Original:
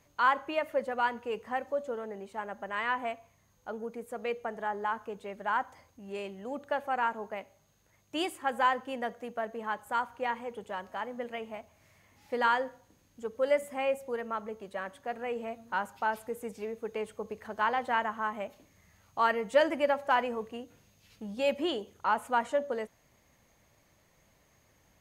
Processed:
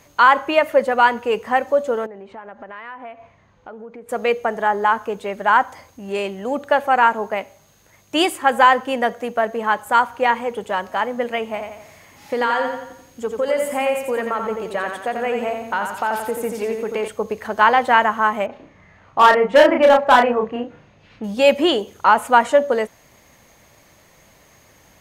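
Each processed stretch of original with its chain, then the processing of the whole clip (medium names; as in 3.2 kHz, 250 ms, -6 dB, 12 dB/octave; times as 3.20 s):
2.06–4.09 s: low-pass 2.5 kHz + compression 4:1, threshold -50 dBFS
11.51–17.08 s: compression 4:1, threshold -33 dBFS + feedback delay 87 ms, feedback 47%, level -5.5 dB
18.46–21.24 s: low-pass 2.1 kHz + overload inside the chain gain 22 dB + doubling 33 ms -3 dB
whole clip: bass shelf 200 Hz -5 dB; loudness maximiser +16.5 dB; trim -1 dB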